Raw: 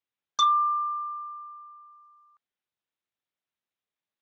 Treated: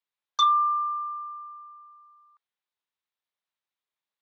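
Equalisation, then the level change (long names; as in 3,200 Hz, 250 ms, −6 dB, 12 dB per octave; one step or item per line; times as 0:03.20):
octave-band graphic EQ 500/1,000/2,000/4,000 Hz +3/+9/+5/+9 dB
−8.5 dB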